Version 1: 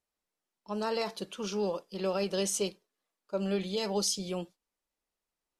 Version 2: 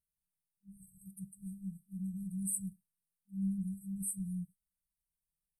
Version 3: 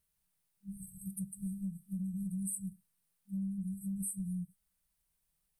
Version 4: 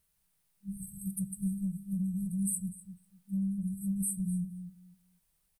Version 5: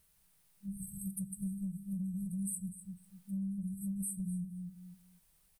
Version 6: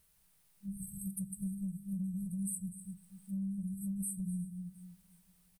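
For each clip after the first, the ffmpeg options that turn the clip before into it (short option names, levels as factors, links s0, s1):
-af "afftfilt=real='re*(1-between(b*sr/4096,200,8000))':imag='im*(1-between(b*sr/4096,200,8000))':win_size=4096:overlap=0.75,volume=1.19"
-af "acompressor=threshold=0.00562:ratio=12,volume=3.16"
-filter_complex "[0:a]asplit=2[s0][s1];[s1]adelay=249,lowpass=f=3900:p=1,volume=0.299,asplit=2[s2][s3];[s3]adelay=249,lowpass=f=3900:p=1,volume=0.21,asplit=2[s4][s5];[s5]adelay=249,lowpass=f=3900:p=1,volume=0.21[s6];[s0][s2][s4][s6]amix=inputs=4:normalize=0,volume=1.78"
-af "acompressor=threshold=0.00316:ratio=2,volume=1.88"
-af "aecho=1:1:356|712|1068:0.0794|0.0397|0.0199"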